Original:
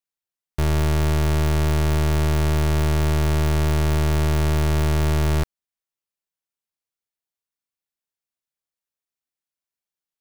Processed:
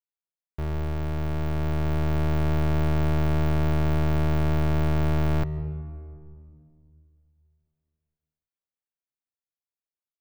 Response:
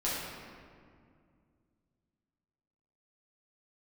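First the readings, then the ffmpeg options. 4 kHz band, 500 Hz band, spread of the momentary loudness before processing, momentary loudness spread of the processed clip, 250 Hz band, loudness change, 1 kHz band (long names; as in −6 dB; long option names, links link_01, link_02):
−10.5 dB, −4.5 dB, 2 LU, 10 LU, −2.5 dB, −5.0 dB, −4.5 dB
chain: -filter_complex "[0:a]equalizer=frequency=9100:width_type=o:width=2.3:gain=-15,dynaudnorm=framelen=270:gausssize=13:maxgain=7dB,asplit=2[link_01][link_02];[1:a]atrim=start_sample=2205,highshelf=frequency=2300:gain=-12,adelay=133[link_03];[link_02][link_03]afir=irnorm=-1:irlink=0,volume=-19.5dB[link_04];[link_01][link_04]amix=inputs=2:normalize=0,volume=-9dB"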